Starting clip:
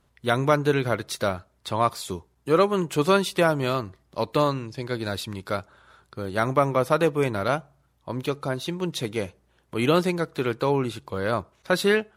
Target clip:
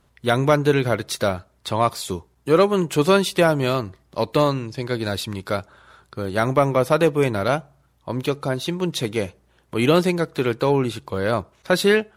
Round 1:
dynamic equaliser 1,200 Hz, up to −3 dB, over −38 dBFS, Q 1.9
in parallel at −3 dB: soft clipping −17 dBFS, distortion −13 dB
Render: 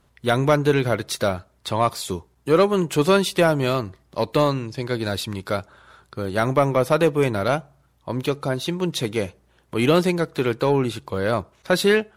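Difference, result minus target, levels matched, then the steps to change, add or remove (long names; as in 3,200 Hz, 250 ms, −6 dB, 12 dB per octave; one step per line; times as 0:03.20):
soft clipping: distortion +7 dB
change: soft clipping −11 dBFS, distortion −20 dB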